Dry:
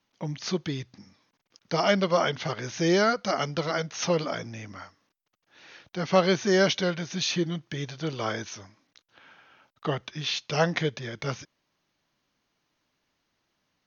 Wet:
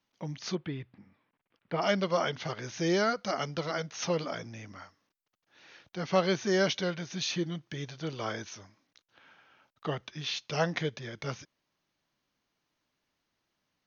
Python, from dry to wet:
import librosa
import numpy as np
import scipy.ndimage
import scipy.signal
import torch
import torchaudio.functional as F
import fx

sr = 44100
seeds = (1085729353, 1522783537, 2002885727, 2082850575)

y = fx.lowpass(x, sr, hz=2900.0, slope=24, at=(0.55, 1.82))
y = y * 10.0 ** (-5.0 / 20.0)